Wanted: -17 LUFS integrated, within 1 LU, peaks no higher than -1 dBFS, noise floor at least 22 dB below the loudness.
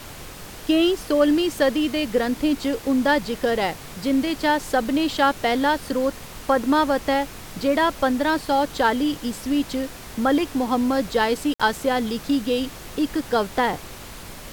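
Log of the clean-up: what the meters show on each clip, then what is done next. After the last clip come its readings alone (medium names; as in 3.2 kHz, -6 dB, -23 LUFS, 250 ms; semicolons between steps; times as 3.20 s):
dropouts 1; longest dropout 56 ms; noise floor -39 dBFS; noise floor target -44 dBFS; loudness -22.0 LUFS; peak level -5.5 dBFS; loudness target -17.0 LUFS
-> interpolate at 11.54 s, 56 ms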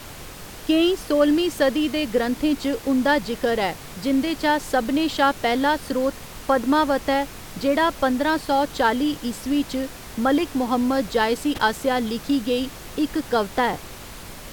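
dropouts 0; noise floor -39 dBFS; noise floor target -44 dBFS
-> noise print and reduce 6 dB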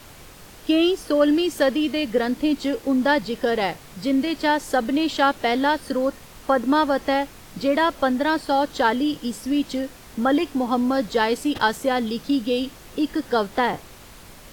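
noise floor -45 dBFS; loudness -22.5 LUFS; peak level -5.5 dBFS; loudness target -17.0 LUFS
-> trim +5.5 dB; peak limiter -1 dBFS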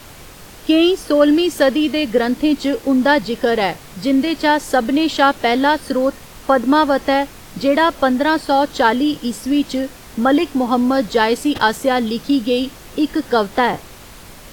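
loudness -17.0 LUFS; peak level -1.0 dBFS; noise floor -39 dBFS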